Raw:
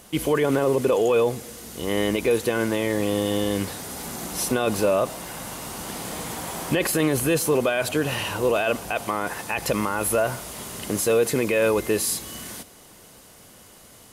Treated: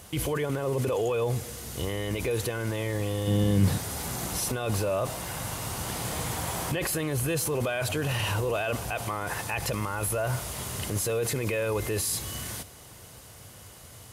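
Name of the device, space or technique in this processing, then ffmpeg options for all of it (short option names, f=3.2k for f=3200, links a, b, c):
car stereo with a boomy subwoofer: -filter_complex "[0:a]highpass=f=130:p=1,lowshelf=f=150:t=q:w=1.5:g=12,alimiter=limit=-20dB:level=0:latency=1:release=20,asettb=1/sr,asplit=3[a][b][c];[a]atrim=end=3.274[d];[b]atrim=start=3.27:end=3.78,asetpts=PTS-STARTPTS,afade=t=in:d=0.004:c=qsin,afade=t=out:st=0.506:d=0.004:c=qsin,equalizer=f=180:t=o:w=1.5:g=14[e];[c]atrim=start=3.776[f];[d][e]acrossfade=d=0.004:c1=hsin:c2=qsin[g];[g][f]acrossfade=d=0.004:c1=qsin:c2=hsin"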